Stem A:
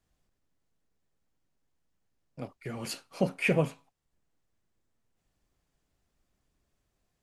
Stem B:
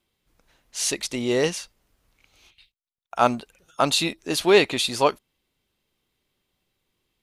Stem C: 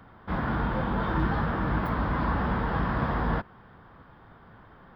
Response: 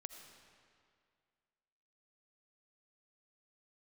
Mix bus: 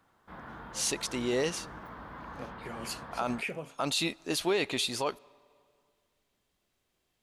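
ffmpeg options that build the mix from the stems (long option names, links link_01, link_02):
-filter_complex "[0:a]acompressor=threshold=-33dB:ratio=6,volume=0.5dB[link_01];[1:a]lowshelf=frequency=250:gain=8.5,volume=-6dB,asplit=2[link_02][link_03];[link_03]volume=-18.5dB[link_04];[2:a]volume=-14dB[link_05];[3:a]atrim=start_sample=2205[link_06];[link_04][link_06]afir=irnorm=-1:irlink=0[link_07];[link_01][link_02][link_05][link_07]amix=inputs=4:normalize=0,lowshelf=frequency=230:gain=-10.5,alimiter=limit=-19.5dB:level=0:latency=1:release=30"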